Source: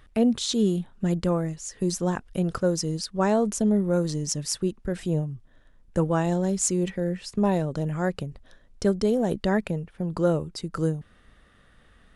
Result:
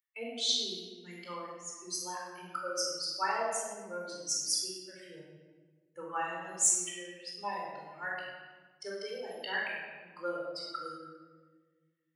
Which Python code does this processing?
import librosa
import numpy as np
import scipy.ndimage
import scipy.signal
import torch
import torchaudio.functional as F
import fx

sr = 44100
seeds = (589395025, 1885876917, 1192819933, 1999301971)

y = fx.bin_expand(x, sr, power=2.0)
y = scipy.signal.sosfilt(scipy.signal.butter(2, 1300.0, 'highpass', fs=sr, output='sos'), y)
y = np.clip(y, -10.0 ** (-14.5 / 20.0), 10.0 ** (-14.5 / 20.0))
y = fx.room_shoebox(y, sr, seeds[0], volume_m3=1400.0, walls='mixed', distance_m=4.3)
y = y * 10.0 ** (-2.0 / 20.0)